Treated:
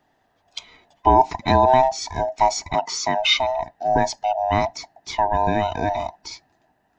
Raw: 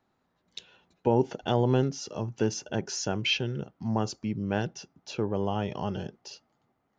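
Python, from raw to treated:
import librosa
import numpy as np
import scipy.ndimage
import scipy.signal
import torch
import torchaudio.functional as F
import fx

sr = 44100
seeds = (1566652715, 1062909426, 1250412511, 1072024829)

y = fx.band_swap(x, sr, width_hz=500)
y = fx.bandpass_edges(y, sr, low_hz=200.0, high_hz=6100.0, at=(2.74, 3.2))
y = y * librosa.db_to_amplitude(9.0)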